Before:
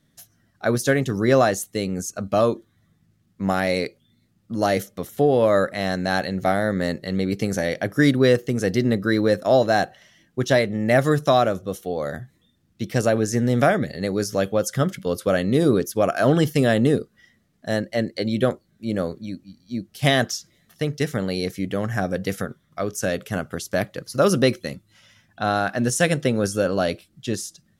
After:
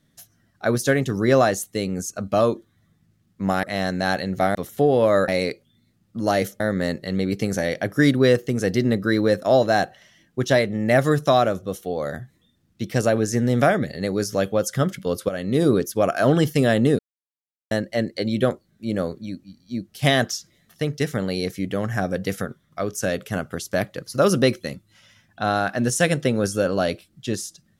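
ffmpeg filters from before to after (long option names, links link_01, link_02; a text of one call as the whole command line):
ffmpeg -i in.wav -filter_complex "[0:a]asplit=8[link_01][link_02][link_03][link_04][link_05][link_06][link_07][link_08];[link_01]atrim=end=3.632[link_09];[link_02]atrim=start=5.678:end=6.602[link_10];[link_03]atrim=start=4.948:end=5.682[link_11];[link_04]atrim=start=3.628:end=4.952[link_12];[link_05]atrim=start=6.598:end=15.29,asetpts=PTS-STARTPTS,afade=type=out:start_time=8.688:duration=0.004:curve=hsin:silence=0.237137[link_13];[link_06]atrim=start=15.29:end=16.99,asetpts=PTS-STARTPTS,afade=type=in:duration=0.33:silence=0.237137,afade=type=out:start_time=1.696:duration=0.004:curve=hsin[link_14];[link_07]atrim=start=16.99:end=17.71,asetpts=PTS-STARTPTS,volume=0[link_15];[link_08]atrim=start=17.71,asetpts=PTS-STARTPTS,afade=type=in:duration=0.004:curve=hsin[link_16];[link_09][link_10]acrossfade=duration=0.004:curve1=hsin:curve2=hsin[link_17];[link_17][link_11]acrossfade=duration=0.004:curve1=hsin:curve2=hsin[link_18];[link_18][link_12]acrossfade=duration=0.004:curve1=hsin:curve2=hsin[link_19];[link_13][link_14][link_15][link_16]concat=n=4:v=0:a=1[link_20];[link_19][link_20]acrossfade=duration=0.004:curve1=hsin:curve2=hsin" out.wav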